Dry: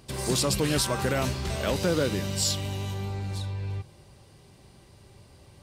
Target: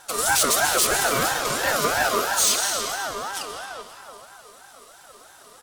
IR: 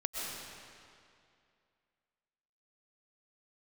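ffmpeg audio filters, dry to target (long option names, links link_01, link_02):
-filter_complex "[0:a]equalizer=frequency=350:width_type=o:width=0.6:gain=9.5,bandreject=frequency=900:width=12,asplit=2[link_01][link_02];[1:a]atrim=start_sample=2205[link_03];[link_02][link_03]afir=irnorm=-1:irlink=0,volume=-5dB[link_04];[link_01][link_04]amix=inputs=2:normalize=0,crystalizer=i=2.5:c=0,asoftclip=type=hard:threshold=-15dB,highpass=120,aecho=1:1:4.7:0.65,aecho=1:1:265|530|795|1060:0.141|0.072|0.0367|0.0187,aeval=exprs='val(0)*sin(2*PI*1000*n/s+1000*0.2/3*sin(2*PI*3*n/s))':channel_layout=same"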